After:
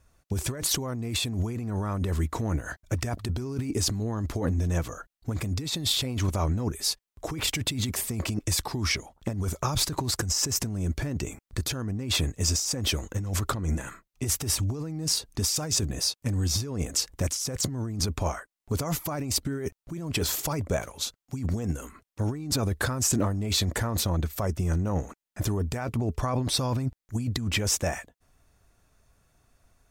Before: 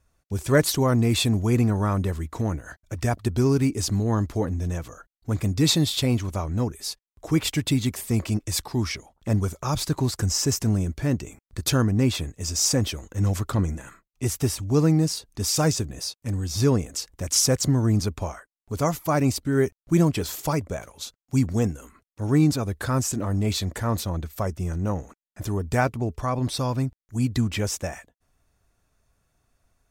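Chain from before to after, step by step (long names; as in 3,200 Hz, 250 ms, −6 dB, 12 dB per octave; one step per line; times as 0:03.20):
compressor whose output falls as the input rises −28 dBFS, ratio −1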